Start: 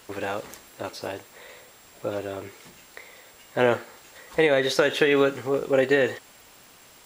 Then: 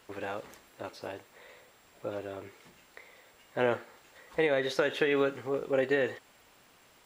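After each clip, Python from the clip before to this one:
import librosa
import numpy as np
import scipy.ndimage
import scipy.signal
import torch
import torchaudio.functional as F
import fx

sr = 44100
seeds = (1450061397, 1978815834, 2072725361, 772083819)

y = fx.bass_treble(x, sr, bass_db=-1, treble_db=-6)
y = F.gain(torch.from_numpy(y), -7.0).numpy()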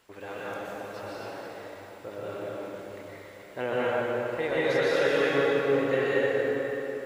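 y = fx.rev_plate(x, sr, seeds[0], rt60_s=3.9, hf_ratio=0.65, predelay_ms=110, drr_db=-8.5)
y = F.gain(torch.from_numpy(y), -4.5).numpy()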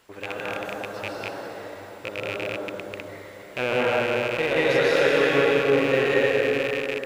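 y = fx.rattle_buzz(x, sr, strikes_db=-43.0, level_db=-22.0)
y = F.gain(torch.from_numpy(y), 4.5).numpy()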